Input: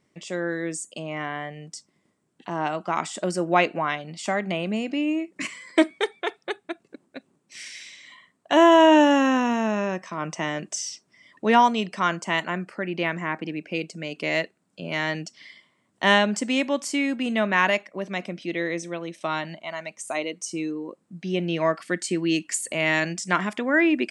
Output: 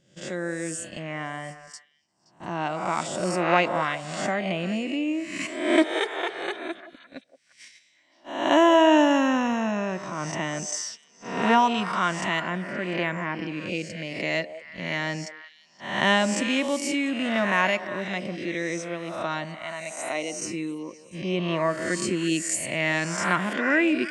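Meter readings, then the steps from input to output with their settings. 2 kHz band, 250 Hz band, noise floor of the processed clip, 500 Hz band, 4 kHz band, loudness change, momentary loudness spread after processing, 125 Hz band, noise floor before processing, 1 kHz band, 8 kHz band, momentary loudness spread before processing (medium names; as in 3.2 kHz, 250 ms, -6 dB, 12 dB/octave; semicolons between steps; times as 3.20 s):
-0.5 dB, -1.5 dB, -61 dBFS, -1.5 dB, -0.5 dB, -1.5 dB, 14 LU, +0.5 dB, -70 dBFS, -1.5 dB, +1.0 dB, 15 LU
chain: reverse spectral sustain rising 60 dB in 0.79 s; gate -35 dBFS, range -18 dB; bass shelf 100 Hz +12 dB; band-stop 430 Hz, Q 12; on a send: repeats whose band climbs or falls 174 ms, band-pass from 560 Hz, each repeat 1.4 oct, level -9.5 dB; on the sum: trim -3.5 dB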